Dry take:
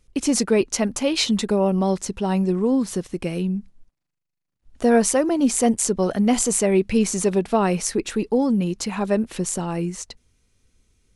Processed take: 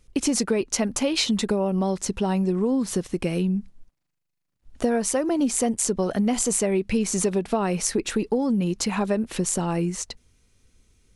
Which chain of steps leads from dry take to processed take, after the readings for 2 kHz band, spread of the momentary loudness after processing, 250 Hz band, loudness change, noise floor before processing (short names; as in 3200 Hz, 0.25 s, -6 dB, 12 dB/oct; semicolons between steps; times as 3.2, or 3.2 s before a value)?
-2.5 dB, 4 LU, -3.0 dB, -3.0 dB, -80 dBFS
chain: compressor 6:1, threshold -22 dBFS, peak gain reduction 10.5 dB; gain +2.5 dB